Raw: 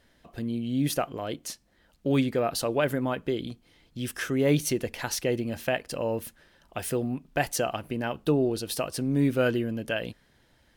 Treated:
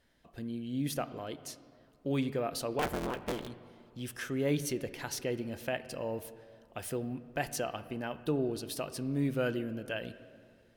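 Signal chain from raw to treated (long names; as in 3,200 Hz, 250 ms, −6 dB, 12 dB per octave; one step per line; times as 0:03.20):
0:02.79–0:03.48: sub-harmonics by changed cycles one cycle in 3, inverted
on a send: convolution reverb RT60 2.3 s, pre-delay 21 ms, DRR 13.5 dB
on the sum: level −7.5 dB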